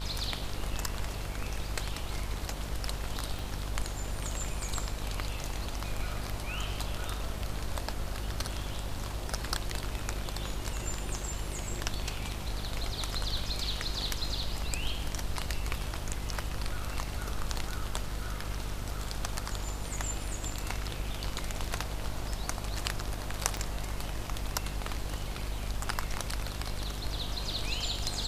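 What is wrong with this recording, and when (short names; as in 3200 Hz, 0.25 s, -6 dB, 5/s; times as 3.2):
buzz 50 Hz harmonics 28 -38 dBFS
3.39 pop
23.57 pop -19 dBFS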